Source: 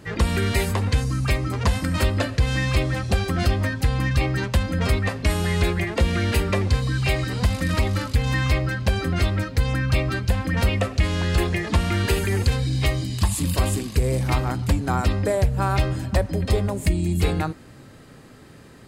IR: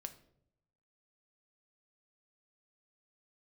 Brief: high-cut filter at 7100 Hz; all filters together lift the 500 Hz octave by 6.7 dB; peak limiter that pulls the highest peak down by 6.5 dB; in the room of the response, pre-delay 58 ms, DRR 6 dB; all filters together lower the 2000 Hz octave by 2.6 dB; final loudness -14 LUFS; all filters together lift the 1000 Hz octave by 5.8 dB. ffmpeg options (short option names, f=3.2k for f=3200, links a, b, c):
-filter_complex "[0:a]lowpass=7.1k,equalizer=f=500:t=o:g=7,equalizer=f=1k:t=o:g=6.5,equalizer=f=2k:t=o:g=-5.5,alimiter=limit=-11.5dB:level=0:latency=1,asplit=2[a][b];[1:a]atrim=start_sample=2205,adelay=58[c];[b][c]afir=irnorm=-1:irlink=0,volume=-2dB[d];[a][d]amix=inputs=2:normalize=0,volume=7.5dB"